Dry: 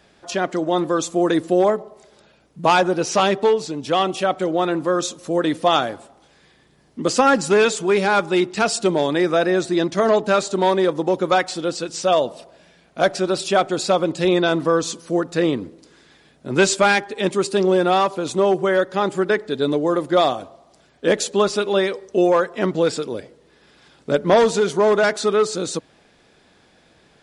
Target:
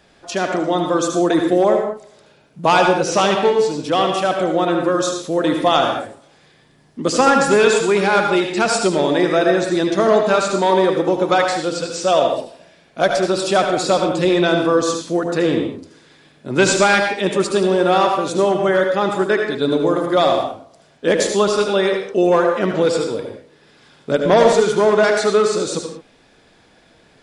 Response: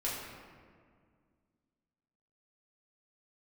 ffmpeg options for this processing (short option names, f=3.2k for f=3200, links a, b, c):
-filter_complex "[0:a]asplit=2[a][b];[1:a]atrim=start_sample=2205,atrim=end_sample=6615,adelay=74[c];[b][c]afir=irnorm=-1:irlink=0,volume=-6.5dB[d];[a][d]amix=inputs=2:normalize=0,volume=1dB"